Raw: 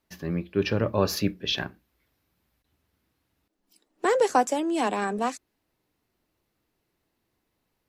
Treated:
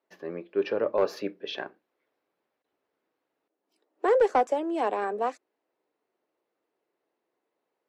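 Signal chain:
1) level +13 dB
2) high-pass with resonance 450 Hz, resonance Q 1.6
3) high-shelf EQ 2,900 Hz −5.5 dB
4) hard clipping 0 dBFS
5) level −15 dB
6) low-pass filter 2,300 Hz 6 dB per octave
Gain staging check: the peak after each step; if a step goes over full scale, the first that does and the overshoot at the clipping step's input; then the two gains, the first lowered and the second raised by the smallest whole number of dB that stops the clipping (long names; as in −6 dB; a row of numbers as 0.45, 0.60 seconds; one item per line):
+4.5, +6.0, +5.5, 0.0, −15.0, −15.0 dBFS
step 1, 5.5 dB
step 1 +7 dB, step 5 −9 dB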